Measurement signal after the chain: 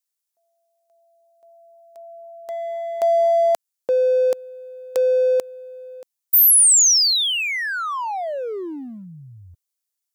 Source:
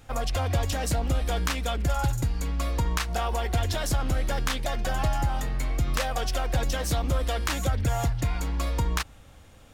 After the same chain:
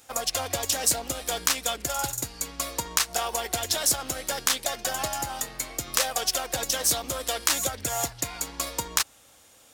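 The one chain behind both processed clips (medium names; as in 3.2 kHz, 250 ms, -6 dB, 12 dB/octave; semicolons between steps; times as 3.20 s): high-pass 140 Hz 6 dB/octave; tone controls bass -10 dB, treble +12 dB; in parallel at -3.5 dB: crossover distortion -32.5 dBFS; on the sum: trim -2.5 dB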